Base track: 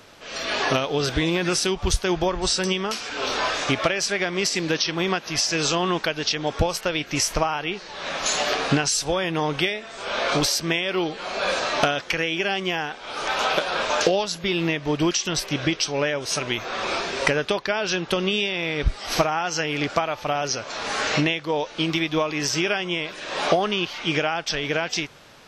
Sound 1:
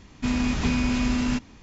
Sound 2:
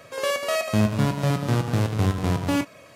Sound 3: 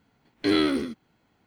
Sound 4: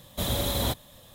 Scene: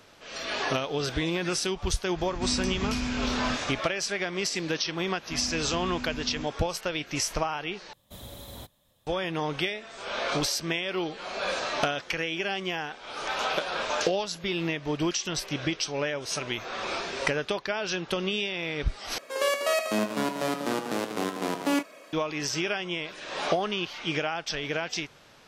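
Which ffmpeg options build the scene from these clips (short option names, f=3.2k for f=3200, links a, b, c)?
-filter_complex "[1:a]asplit=2[a][b];[0:a]volume=-6dB[c];[a]acompressor=mode=upward:threshold=-27dB:ratio=4:attack=0.81:release=82:knee=2.83:detection=peak[d];[2:a]highpass=f=250:w=0.5412,highpass=f=250:w=1.3066[e];[c]asplit=3[f][g][h];[f]atrim=end=7.934[i];[4:a]atrim=end=1.14,asetpts=PTS-STARTPTS,volume=-16dB[j];[g]atrim=start=9.066:end=19.184[k];[e]atrim=end=2.95,asetpts=PTS-STARTPTS,volume=-1dB[l];[h]atrim=start=22.126[m];[d]atrim=end=1.62,asetpts=PTS-STARTPTS,volume=-7dB,afade=t=in:d=0.004:c=hsin,afade=t=out:st=1.616:d=0.004:c=hsin,adelay=2180[n];[b]atrim=end=1.62,asetpts=PTS-STARTPTS,volume=-13.5dB,afade=t=in:d=0.004:c=hsin,afade=t=out:st=1.616:d=0.004:c=hsin,adelay=5080[o];[i][j]acrossfade=d=0.004:c1=hsin:c2=hsin[p];[p][k]acrossfade=d=0.004:c1=hsin:c2=hsin[q];[q][l]acrossfade=d=0.004:c1=hsin:c2=hsin[r];[r][m]acrossfade=d=0.004:c1=hsin:c2=hsin[s];[s][n][o]amix=inputs=3:normalize=0"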